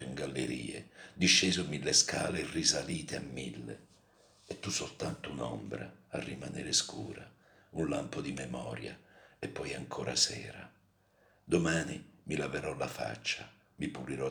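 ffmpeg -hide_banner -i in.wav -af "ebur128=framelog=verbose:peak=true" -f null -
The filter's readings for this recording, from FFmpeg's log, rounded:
Integrated loudness:
  I:         -33.6 LUFS
  Threshold: -44.5 LUFS
Loudness range:
  LRA:        10.3 LU
  Threshold: -55.1 LUFS
  LRA low:   -40.5 LUFS
  LRA high:  -30.2 LUFS
True peak:
  Peak:      -11.0 dBFS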